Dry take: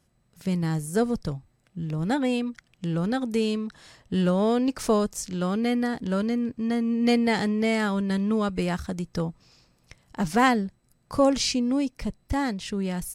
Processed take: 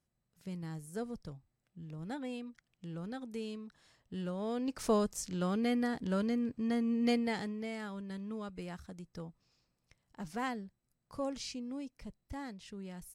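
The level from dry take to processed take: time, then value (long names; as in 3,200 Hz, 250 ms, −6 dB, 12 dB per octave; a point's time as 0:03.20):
0:04.37 −16 dB
0:04.93 −7 dB
0:06.97 −7 dB
0:07.70 −17 dB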